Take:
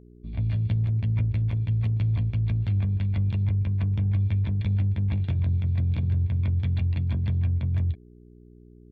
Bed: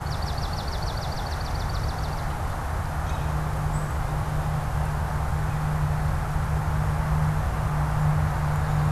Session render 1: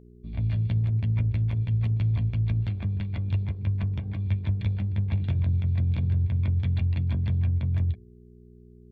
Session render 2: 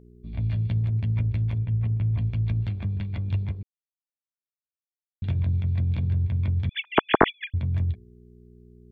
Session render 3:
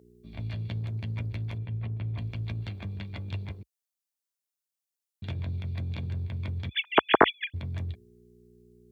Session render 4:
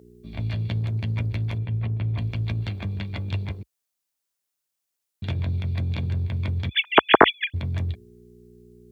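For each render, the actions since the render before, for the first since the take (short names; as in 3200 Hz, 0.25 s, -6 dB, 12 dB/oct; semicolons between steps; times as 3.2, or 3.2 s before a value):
de-hum 50 Hz, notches 10
1.58–2.18 air absorption 400 m; 3.63–5.22 mute; 6.69–7.54 sine-wave speech
HPF 57 Hz 24 dB/oct; tone controls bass -9 dB, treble +8 dB
gain +7 dB; limiter -3 dBFS, peak gain reduction 3 dB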